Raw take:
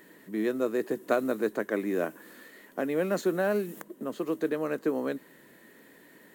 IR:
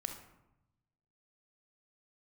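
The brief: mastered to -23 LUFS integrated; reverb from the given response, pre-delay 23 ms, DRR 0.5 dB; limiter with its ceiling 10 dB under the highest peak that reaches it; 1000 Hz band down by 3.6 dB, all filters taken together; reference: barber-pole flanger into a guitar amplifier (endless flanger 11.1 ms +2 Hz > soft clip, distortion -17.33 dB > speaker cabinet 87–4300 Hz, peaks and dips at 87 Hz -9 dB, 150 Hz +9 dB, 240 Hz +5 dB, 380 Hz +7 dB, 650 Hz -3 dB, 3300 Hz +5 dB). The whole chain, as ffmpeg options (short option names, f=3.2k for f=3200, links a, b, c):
-filter_complex "[0:a]equalizer=f=1k:t=o:g=-4.5,alimiter=limit=-23dB:level=0:latency=1,asplit=2[a][b];[1:a]atrim=start_sample=2205,adelay=23[c];[b][c]afir=irnorm=-1:irlink=0,volume=0dB[d];[a][d]amix=inputs=2:normalize=0,asplit=2[e][f];[f]adelay=11.1,afreqshift=2[g];[e][g]amix=inputs=2:normalize=1,asoftclip=threshold=-26dB,highpass=87,equalizer=f=87:t=q:w=4:g=-9,equalizer=f=150:t=q:w=4:g=9,equalizer=f=240:t=q:w=4:g=5,equalizer=f=380:t=q:w=4:g=7,equalizer=f=650:t=q:w=4:g=-3,equalizer=f=3.3k:t=q:w=4:g=5,lowpass=f=4.3k:w=0.5412,lowpass=f=4.3k:w=1.3066,volume=10dB"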